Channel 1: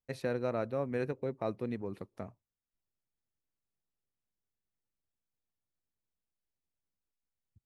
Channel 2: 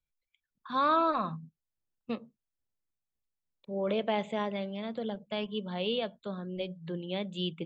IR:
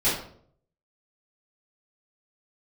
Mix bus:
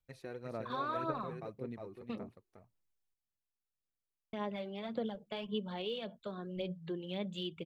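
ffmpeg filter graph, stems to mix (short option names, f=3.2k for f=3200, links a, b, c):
-filter_complex "[0:a]volume=-11.5dB,asplit=2[a][b];[b]volume=-5dB[c];[1:a]acompressor=threshold=-34dB:ratio=6,volume=-2.5dB,asplit=3[d][e][f];[d]atrim=end=3.14,asetpts=PTS-STARTPTS,afade=t=out:st=3.136:d=0.004:c=hsin[g];[e]atrim=start=3.14:end=4.33,asetpts=PTS-STARTPTS,volume=0[h];[f]atrim=start=4.33,asetpts=PTS-STARTPTS,afade=t=in:d=0.004:c=hsin[i];[g][h][i]concat=n=3:v=0:a=1[j];[c]aecho=0:1:358:1[k];[a][j][k]amix=inputs=3:normalize=0,aphaser=in_gain=1:out_gain=1:delay=2.8:decay=0.45:speed=1.8:type=sinusoidal"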